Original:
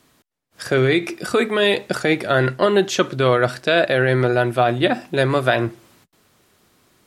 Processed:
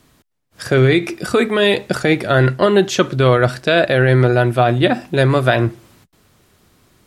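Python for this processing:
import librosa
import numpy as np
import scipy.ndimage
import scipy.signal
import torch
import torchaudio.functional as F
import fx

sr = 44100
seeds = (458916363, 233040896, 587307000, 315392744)

y = fx.low_shelf(x, sr, hz=130.0, db=11.5)
y = y * 10.0 ** (2.0 / 20.0)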